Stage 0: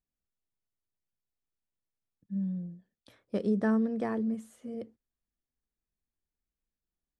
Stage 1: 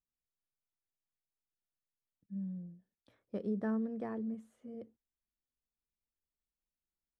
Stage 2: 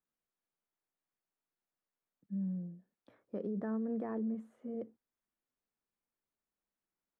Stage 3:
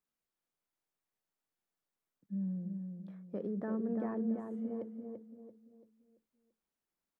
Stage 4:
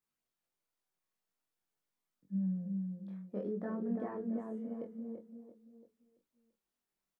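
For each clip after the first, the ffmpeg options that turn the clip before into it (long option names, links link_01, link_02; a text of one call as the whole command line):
ffmpeg -i in.wav -af "highshelf=frequency=2900:gain=-10.5,volume=-7.5dB" out.wav
ffmpeg -i in.wav -filter_complex "[0:a]alimiter=level_in=12dB:limit=-24dB:level=0:latency=1:release=43,volume=-12dB,acrossover=split=150 2000:gain=0.2 1 0.224[link_01][link_02][link_03];[link_01][link_02][link_03]amix=inputs=3:normalize=0,volume=6.5dB" out.wav
ffmpeg -i in.wav -filter_complex "[0:a]asplit=2[link_01][link_02];[link_02]adelay=338,lowpass=frequency=1500:poles=1,volume=-5dB,asplit=2[link_03][link_04];[link_04]adelay=338,lowpass=frequency=1500:poles=1,volume=0.4,asplit=2[link_05][link_06];[link_06]adelay=338,lowpass=frequency=1500:poles=1,volume=0.4,asplit=2[link_07][link_08];[link_08]adelay=338,lowpass=frequency=1500:poles=1,volume=0.4,asplit=2[link_09][link_10];[link_10]adelay=338,lowpass=frequency=1500:poles=1,volume=0.4[link_11];[link_01][link_03][link_05][link_07][link_09][link_11]amix=inputs=6:normalize=0" out.wav
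ffmpeg -i in.wav -filter_complex "[0:a]flanger=delay=20:depth=6.5:speed=0.49,asplit=2[link_01][link_02];[link_02]adelay=21,volume=-6dB[link_03];[link_01][link_03]amix=inputs=2:normalize=0,volume=2dB" out.wav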